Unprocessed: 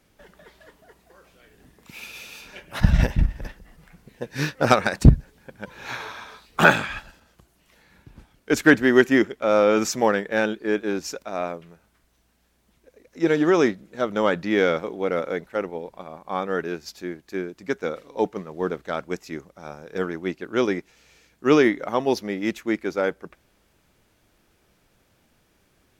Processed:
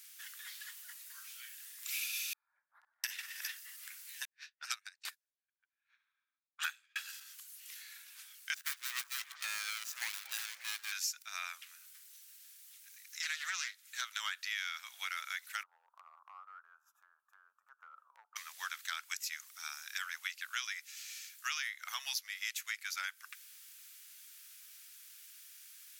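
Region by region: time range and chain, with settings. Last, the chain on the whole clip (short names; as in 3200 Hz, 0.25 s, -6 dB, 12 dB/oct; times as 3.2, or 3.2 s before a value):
2.33–3.04 inverse Chebyshev low-pass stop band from 2600 Hz, stop band 60 dB + bell 550 Hz -14.5 dB 2.2 oct + compressor, threshold -27 dBFS
4.25–6.96 low-pass opened by the level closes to 1400 Hz, open at -14.5 dBFS + upward expander 2.5:1, over -36 dBFS
8.54–10.92 median filter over 41 samples + delay with a stepping band-pass 0.115 s, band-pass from 360 Hz, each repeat 0.7 oct, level -9 dB
11.5–14.21 low shelf 480 Hz -9 dB + Doppler distortion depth 0.14 ms
15.63–18.36 elliptic low-pass 1300 Hz + compressor 4:1, threshold -36 dBFS
whole clip: inverse Chebyshev high-pass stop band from 300 Hz, stop band 70 dB; differentiator; compressor 6:1, threshold -51 dBFS; gain +15 dB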